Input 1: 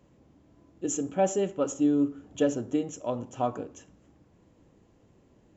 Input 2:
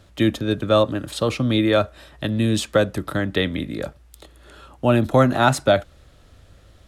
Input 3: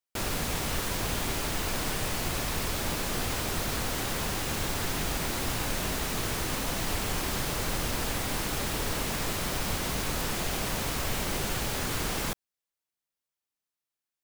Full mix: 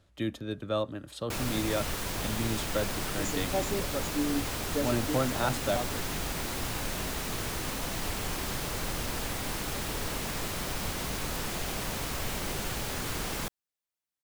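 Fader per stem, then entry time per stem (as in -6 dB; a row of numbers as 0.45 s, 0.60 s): -7.0 dB, -13.5 dB, -3.0 dB; 2.35 s, 0.00 s, 1.15 s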